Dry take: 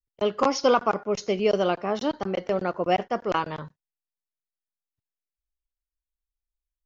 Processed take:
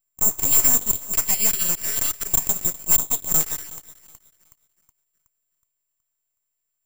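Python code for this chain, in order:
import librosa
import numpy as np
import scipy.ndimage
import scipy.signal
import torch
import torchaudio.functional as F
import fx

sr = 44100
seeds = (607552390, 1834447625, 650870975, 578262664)

y = scipy.signal.sosfilt(scipy.signal.ellip(3, 1.0, 40, [220.0, 1900.0], 'bandstop', fs=sr, output='sos'), x)
y = fx.filter_lfo_highpass(y, sr, shape='square', hz=0.44, low_hz=490.0, high_hz=2200.0, q=3.0)
y = fx.fold_sine(y, sr, drive_db=18, ceiling_db=-7.0)
y = fx.echo_banded(y, sr, ms=370, feedback_pct=52, hz=660.0, wet_db=-11.0)
y = np.abs(y)
y = (np.kron(scipy.signal.resample_poly(y, 1, 6), np.eye(6)[0]) * 6)[:len(y)]
y = y * librosa.db_to_amplitude(-10.0)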